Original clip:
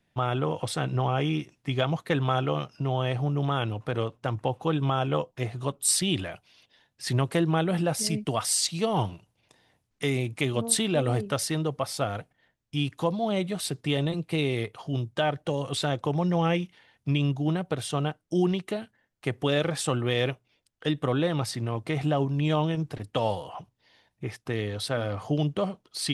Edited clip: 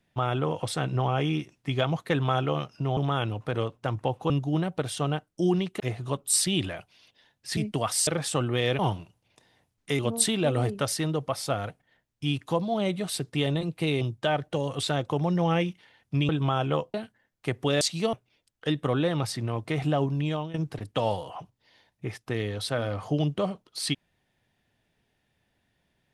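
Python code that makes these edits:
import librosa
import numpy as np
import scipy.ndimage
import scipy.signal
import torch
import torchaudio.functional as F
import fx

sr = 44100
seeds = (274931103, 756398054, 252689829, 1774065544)

y = fx.edit(x, sr, fx.cut(start_s=2.97, length_s=0.4),
    fx.swap(start_s=4.7, length_s=0.65, other_s=17.23, other_length_s=1.5),
    fx.cut(start_s=7.12, length_s=0.98),
    fx.swap(start_s=8.6, length_s=0.32, other_s=19.6, other_length_s=0.72),
    fx.cut(start_s=10.12, length_s=0.38),
    fx.cut(start_s=14.52, length_s=0.43),
    fx.fade_out_to(start_s=22.32, length_s=0.41, floor_db=-15.0), tone=tone)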